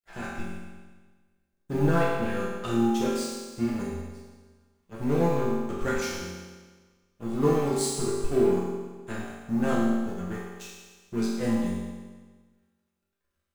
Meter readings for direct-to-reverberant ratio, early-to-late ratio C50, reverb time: −7.5 dB, −0.5 dB, 1.4 s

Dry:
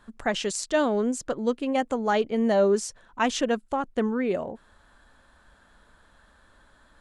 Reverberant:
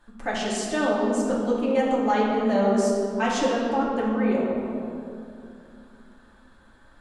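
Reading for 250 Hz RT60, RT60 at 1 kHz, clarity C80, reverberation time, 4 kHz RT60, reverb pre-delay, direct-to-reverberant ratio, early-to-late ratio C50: 3.6 s, 2.6 s, 1.5 dB, 2.7 s, 1.4 s, 3 ms, −6.0 dB, −0.5 dB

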